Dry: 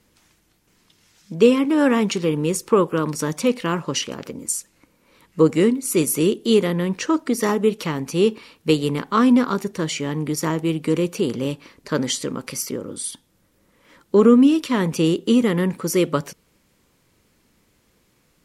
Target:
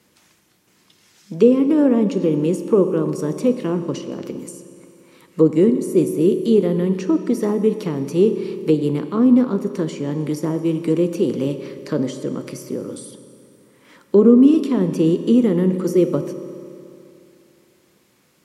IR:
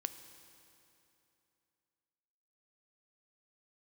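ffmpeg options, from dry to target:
-filter_complex "[0:a]highpass=130,acrossover=split=660[a][b];[b]acompressor=threshold=-40dB:ratio=12[c];[a][c]amix=inputs=2:normalize=0[d];[1:a]atrim=start_sample=2205,asetrate=48510,aresample=44100[e];[d][e]afir=irnorm=-1:irlink=0,volume=5.5dB"

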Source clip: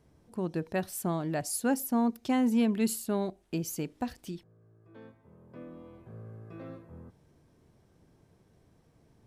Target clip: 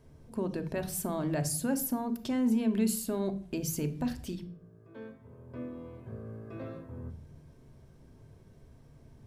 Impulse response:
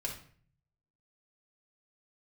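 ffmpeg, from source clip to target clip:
-filter_complex "[0:a]alimiter=level_in=3.5dB:limit=-24dB:level=0:latency=1:release=63,volume=-3.5dB,asplit=2[a][b];[1:a]atrim=start_sample=2205,lowshelf=f=310:g=10.5[c];[b][c]afir=irnorm=-1:irlink=0,volume=-6dB[d];[a][d]amix=inputs=2:normalize=0"

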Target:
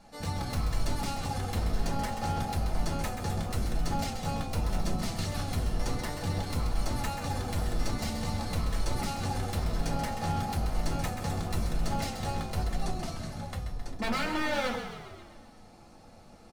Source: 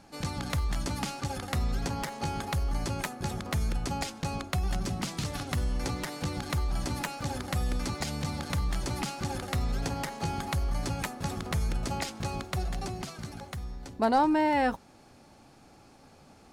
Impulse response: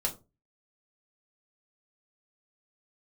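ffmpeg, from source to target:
-filter_complex "[0:a]aeval=exprs='0.0473*(abs(mod(val(0)/0.0473+3,4)-2)-1)':c=same,asplit=9[a][b][c][d][e][f][g][h][i];[b]adelay=132,afreqshift=-44,volume=-8dB[j];[c]adelay=264,afreqshift=-88,volume=-12.4dB[k];[d]adelay=396,afreqshift=-132,volume=-16.9dB[l];[e]adelay=528,afreqshift=-176,volume=-21.3dB[m];[f]adelay=660,afreqshift=-220,volume=-25.7dB[n];[g]adelay=792,afreqshift=-264,volume=-30.2dB[o];[h]adelay=924,afreqshift=-308,volume=-34.6dB[p];[i]adelay=1056,afreqshift=-352,volume=-39.1dB[q];[a][j][k][l][m][n][o][p][q]amix=inputs=9:normalize=0[r];[1:a]atrim=start_sample=2205[s];[r][s]afir=irnorm=-1:irlink=0,volume=-5dB"

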